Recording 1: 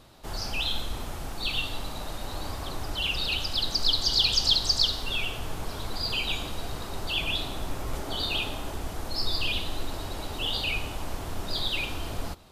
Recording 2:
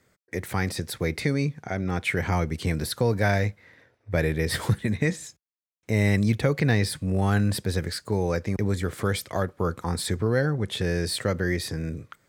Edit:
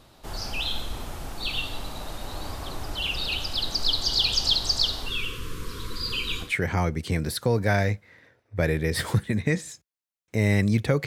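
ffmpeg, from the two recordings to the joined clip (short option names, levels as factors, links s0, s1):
-filter_complex "[0:a]asettb=1/sr,asplit=3[s0][s1][s2];[s0]atrim=end=5.084[s3];[s1]atrim=start=5.08:end=6.53,asetpts=PTS-STARTPTS,afade=t=in:d=0.004:c=qsin,afade=t=out:st=1.446:d=0.004:c=qsin,asuperstop=centerf=720:order=20:qfactor=1.7[s4];[s2]atrim=start=6.526[s5];[s3][s4]acrossfade=d=0.004:c1=hsin:c2=qsin[s6];[s6][s5]acrossfade=d=0.004:c1=qsin:c2=hsin,apad=whole_dur=11.06,atrim=end=11.06,atrim=end=6.53,asetpts=PTS-STARTPTS[s7];[1:a]atrim=start=1.94:end=6.61,asetpts=PTS-STARTPTS[s8];[s7][s8]acrossfade=d=0.14:c1=tri:c2=tri"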